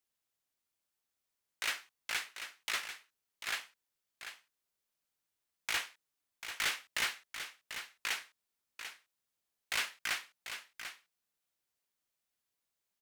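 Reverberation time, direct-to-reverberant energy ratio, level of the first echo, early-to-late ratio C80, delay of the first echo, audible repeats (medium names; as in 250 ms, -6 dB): no reverb, no reverb, -9.5 dB, no reverb, 742 ms, 1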